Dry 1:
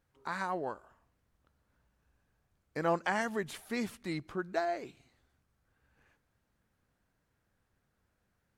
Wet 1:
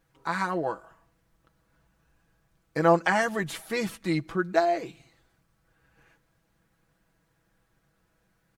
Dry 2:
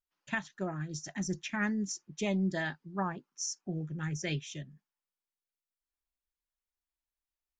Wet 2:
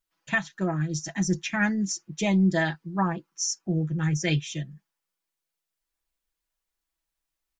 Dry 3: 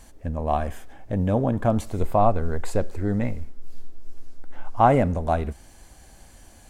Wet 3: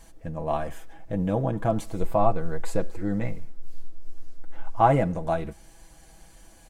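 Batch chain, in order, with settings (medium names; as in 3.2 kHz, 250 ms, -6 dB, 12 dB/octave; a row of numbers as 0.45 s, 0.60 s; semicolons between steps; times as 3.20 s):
comb 6.1 ms, depth 67%; normalise loudness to -27 LUFS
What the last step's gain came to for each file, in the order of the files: +6.5 dB, +6.5 dB, -4.0 dB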